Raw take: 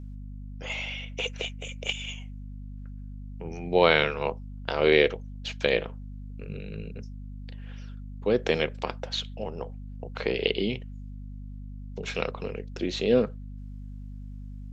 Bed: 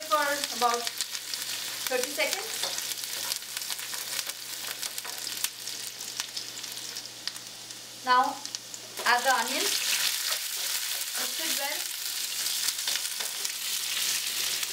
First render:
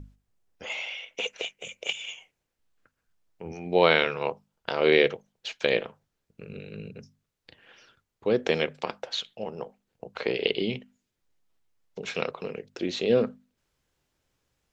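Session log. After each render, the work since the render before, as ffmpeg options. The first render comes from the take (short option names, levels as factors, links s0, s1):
-af "bandreject=f=50:t=h:w=6,bandreject=f=100:t=h:w=6,bandreject=f=150:t=h:w=6,bandreject=f=200:t=h:w=6,bandreject=f=250:t=h:w=6"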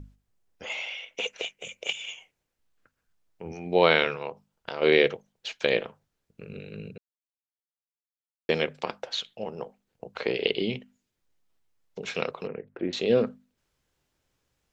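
-filter_complex "[0:a]asplit=3[s0][s1][s2];[s0]afade=t=out:st=4.15:d=0.02[s3];[s1]acompressor=threshold=0.0112:ratio=1.5:attack=3.2:release=140:knee=1:detection=peak,afade=t=in:st=4.15:d=0.02,afade=t=out:st=4.81:d=0.02[s4];[s2]afade=t=in:st=4.81:d=0.02[s5];[s3][s4][s5]amix=inputs=3:normalize=0,asettb=1/sr,asplit=3[s6][s7][s8];[s6]atrim=end=12.474[s9];[s7]atrim=start=12.47:end=12.93,asetpts=PTS-STARTPTS,afade=t=in:d=0.004:c=qsin,afade=t=out:st=0.456:d=0.004:c=qsin,lowpass=f=2000:w=0.5412,lowpass=f=2000:w=1.3066[s10];[s8]atrim=start=12.926[s11];[s9][s10]acrossfade=d=0.004:c1=hsin:c2=qsin[s12];[s12][s11]acrossfade=d=0.004:c1=qsin:c2=hsin,asplit=3[s13][s14][s15];[s13]atrim=end=6.98,asetpts=PTS-STARTPTS,afade=t=out:st=6.976:d=0.004:c=hsin[s16];[s14]atrim=start=6.98:end=8.49,asetpts=PTS-STARTPTS,volume=0[s17];[s15]atrim=start=8.49,asetpts=PTS-STARTPTS,afade=t=in:d=0.004:c=hsin[s18];[s16][s17][s18]concat=n=3:v=0:a=1"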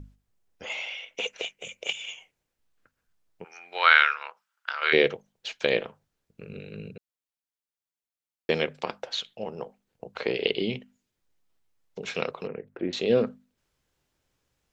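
-filter_complex "[0:a]asplit=3[s0][s1][s2];[s0]afade=t=out:st=3.43:d=0.02[s3];[s1]highpass=f=1400:t=q:w=3.7,afade=t=in:st=3.43:d=0.02,afade=t=out:st=4.92:d=0.02[s4];[s2]afade=t=in:st=4.92:d=0.02[s5];[s3][s4][s5]amix=inputs=3:normalize=0"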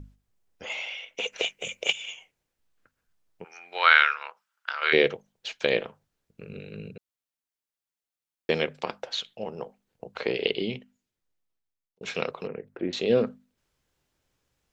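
-filter_complex "[0:a]asettb=1/sr,asplit=3[s0][s1][s2];[s0]atrim=end=1.324[s3];[s1]atrim=start=1.32:end=1.92,asetpts=PTS-STARTPTS,afade=t=in:d=0.004:c=qsin,afade=t=out:st=0.596:d=0.004:c=qsin,acontrast=36[s4];[s2]atrim=start=1.916[s5];[s3][s4]acrossfade=d=0.004:c1=hsin:c2=qsin[s6];[s6][s5]acrossfade=d=0.004:c1=qsin:c2=hsin,asplit=2[s7][s8];[s7]atrim=end=12.01,asetpts=PTS-STARTPTS,afade=t=out:st=10.39:d=1.62[s9];[s8]atrim=start=12.01,asetpts=PTS-STARTPTS,afade=t=in:d=0.004:c=hsin[s10];[s9][s10]concat=n=2:v=0:a=1"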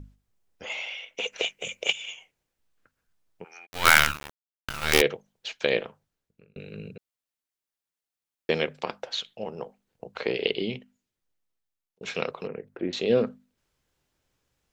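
-filter_complex "[0:a]asplit=3[s0][s1][s2];[s0]afade=t=out:st=3.65:d=0.02[s3];[s1]acrusher=bits=3:dc=4:mix=0:aa=0.000001,afade=t=in:st=3.65:d=0.02,afade=t=out:st=5:d=0.02[s4];[s2]afade=t=in:st=5:d=0.02[s5];[s3][s4][s5]amix=inputs=3:normalize=0,asplit=2[s6][s7];[s6]atrim=end=6.56,asetpts=PTS-STARTPTS,afade=t=out:st=5.61:d=0.95:c=qsin[s8];[s7]atrim=start=6.56,asetpts=PTS-STARTPTS,afade=t=in:d=0.004:c=hsin[s9];[s8][s9]concat=n=2:v=0:a=1"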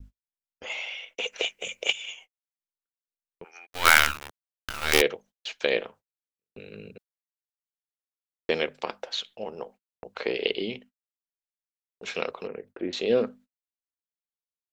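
-af "equalizer=f=140:w=1.6:g=-10,agate=range=0.0112:threshold=0.00355:ratio=16:detection=peak"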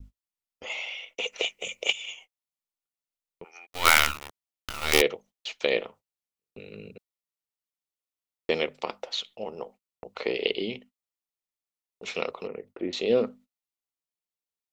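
-af "bandreject=f=1600:w=5.3"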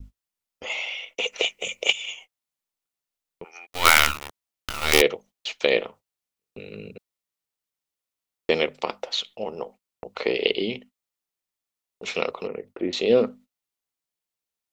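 -af "volume=1.68,alimiter=limit=0.891:level=0:latency=1"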